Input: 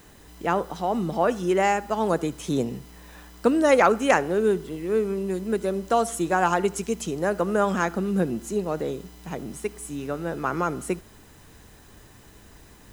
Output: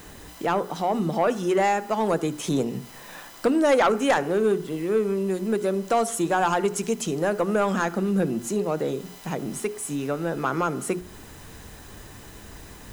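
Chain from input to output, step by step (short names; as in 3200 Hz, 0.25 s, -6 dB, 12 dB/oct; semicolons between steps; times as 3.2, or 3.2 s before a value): notches 60/120/180/240/300/360/420 Hz; in parallel at +2 dB: compressor, threshold -35 dBFS, peak gain reduction 20 dB; on the sum: soft clip -12.5 dBFS, distortion -16 dB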